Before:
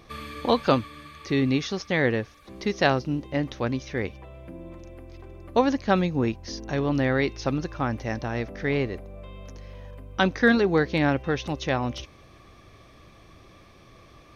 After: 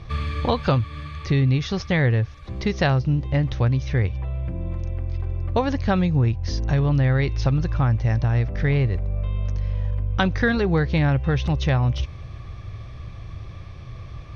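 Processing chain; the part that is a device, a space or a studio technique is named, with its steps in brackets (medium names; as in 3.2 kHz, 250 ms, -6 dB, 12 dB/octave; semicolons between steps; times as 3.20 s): jukebox (low-pass 5.3 kHz 12 dB/octave; resonant low shelf 170 Hz +12.5 dB, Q 1.5; compression 3:1, threshold -23 dBFS, peak gain reduction 7.5 dB); trim +5 dB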